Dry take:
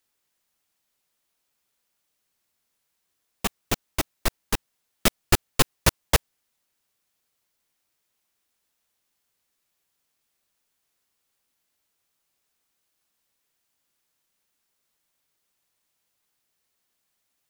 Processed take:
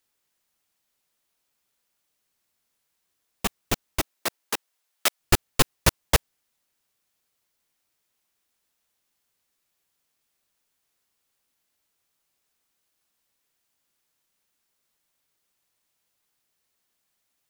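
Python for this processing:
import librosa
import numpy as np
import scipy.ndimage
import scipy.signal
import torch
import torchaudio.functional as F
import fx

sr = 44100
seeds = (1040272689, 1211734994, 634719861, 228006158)

y = fx.highpass(x, sr, hz=fx.line((4.0, 230.0), (5.19, 730.0)), slope=12, at=(4.0, 5.19), fade=0.02)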